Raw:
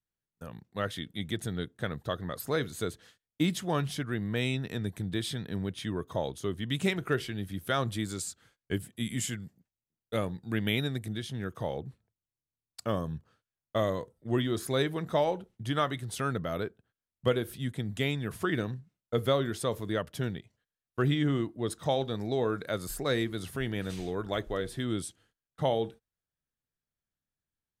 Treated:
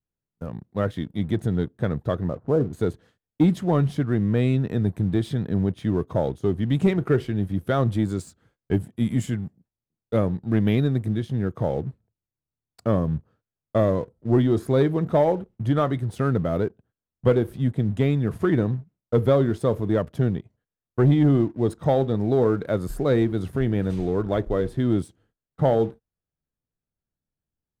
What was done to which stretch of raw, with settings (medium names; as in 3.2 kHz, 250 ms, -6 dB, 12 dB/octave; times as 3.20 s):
2.28–2.73 s: low-pass 1.1 kHz 24 dB/octave
whole clip: tilt shelf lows +9.5 dB, about 1.4 kHz; waveshaping leveller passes 1; trim -1.5 dB